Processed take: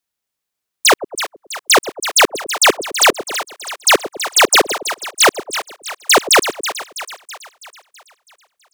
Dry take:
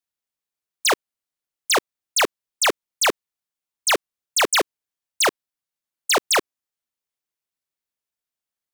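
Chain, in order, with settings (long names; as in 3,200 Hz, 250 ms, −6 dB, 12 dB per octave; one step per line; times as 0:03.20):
echo with a time of its own for lows and highs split 650 Hz, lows 106 ms, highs 327 ms, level −11 dB
level +8 dB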